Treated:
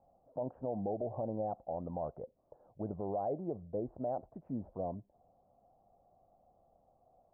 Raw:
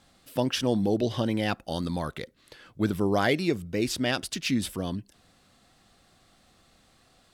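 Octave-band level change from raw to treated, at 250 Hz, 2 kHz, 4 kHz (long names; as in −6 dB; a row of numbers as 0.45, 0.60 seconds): −14.0 dB, below −40 dB, below −40 dB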